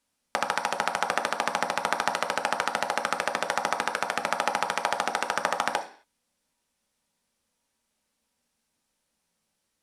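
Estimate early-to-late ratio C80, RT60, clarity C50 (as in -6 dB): 16.0 dB, 0.45 s, 11.0 dB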